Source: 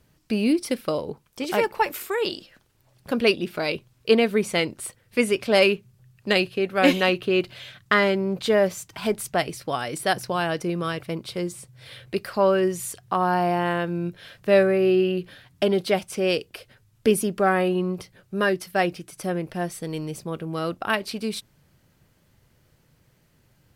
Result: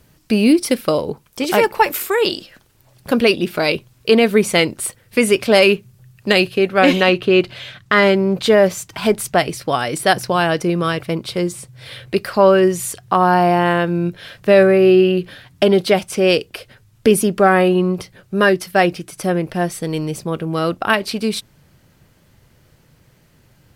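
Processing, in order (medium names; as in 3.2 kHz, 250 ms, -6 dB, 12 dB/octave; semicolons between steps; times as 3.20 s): treble shelf 8.7 kHz +4 dB, from 6.69 s -9 dB, from 7.94 s -2 dB; loudness maximiser +9.5 dB; trim -1 dB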